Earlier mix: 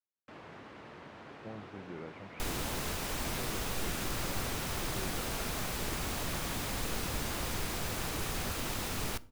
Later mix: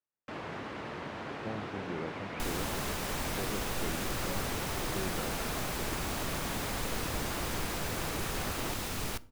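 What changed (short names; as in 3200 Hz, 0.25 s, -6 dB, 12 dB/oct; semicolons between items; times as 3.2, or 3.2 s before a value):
speech +5.5 dB; first sound +9.5 dB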